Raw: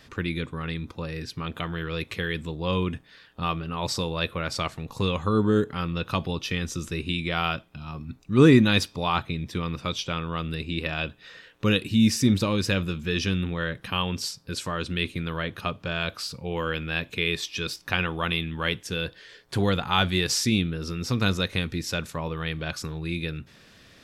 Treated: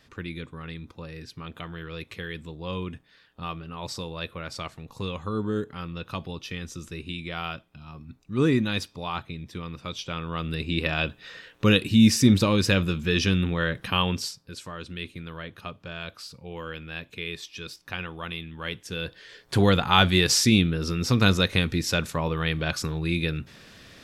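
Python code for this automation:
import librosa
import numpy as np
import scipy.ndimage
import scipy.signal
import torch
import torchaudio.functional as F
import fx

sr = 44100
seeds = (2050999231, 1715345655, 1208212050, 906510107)

y = fx.gain(x, sr, db=fx.line((9.8, -6.5), (10.74, 3.0), (14.1, 3.0), (14.51, -8.0), (18.53, -8.0), (19.58, 4.0)))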